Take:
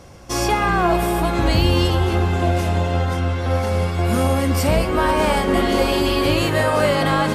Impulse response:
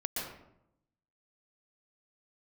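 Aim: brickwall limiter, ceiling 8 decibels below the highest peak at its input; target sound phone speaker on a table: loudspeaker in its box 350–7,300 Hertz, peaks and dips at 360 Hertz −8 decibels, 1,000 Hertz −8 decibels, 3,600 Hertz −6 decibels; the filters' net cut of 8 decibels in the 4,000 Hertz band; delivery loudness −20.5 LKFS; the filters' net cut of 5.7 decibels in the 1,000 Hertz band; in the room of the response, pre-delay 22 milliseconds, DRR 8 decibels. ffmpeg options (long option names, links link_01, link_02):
-filter_complex "[0:a]equalizer=frequency=1000:width_type=o:gain=-3.5,equalizer=frequency=4000:width_type=o:gain=-8,alimiter=limit=-15dB:level=0:latency=1,asplit=2[link_01][link_02];[1:a]atrim=start_sample=2205,adelay=22[link_03];[link_02][link_03]afir=irnorm=-1:irlink=0,volume=-12dB[link_04];[link_01][link_04]amix=inputs=2:normalize=0,highpass=frequency=350:width=0.5412,highpass=frequency=350:width=1.3066,equalizer=frequency=360:width_type=q:width=4:gain=-8,equalizer=frequency=1000:width_type=q:width=4:gain=-8,equalizer=frequency=3600:width_type=q:width=4:gain=-6,lowpass=frequency=7300:width=0.5412,lowpass=frequency=7300:width=1.3066,volume=8.5dB"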